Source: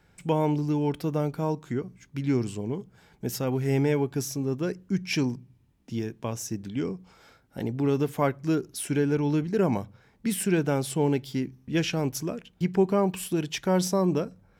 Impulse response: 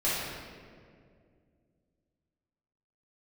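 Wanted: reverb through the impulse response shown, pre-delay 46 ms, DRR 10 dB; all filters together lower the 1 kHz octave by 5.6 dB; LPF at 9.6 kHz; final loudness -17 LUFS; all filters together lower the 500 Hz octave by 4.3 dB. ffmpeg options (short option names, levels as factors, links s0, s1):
-filter_complex "[0:a]lowpass=9600,equalizer=f=500:t=o:g=-4.5,equalizer=f=1000:t=o:g=-5.5,asplit=2[s0][s1];[1:a]atrim=start_sample=2205,adelay=46[s2];[s1][s2]afir=irnorm=-1:irlink=0,volume=0.0891[s3];[s0][s3]amix=inputs=2:normalize=0,volume=4.22"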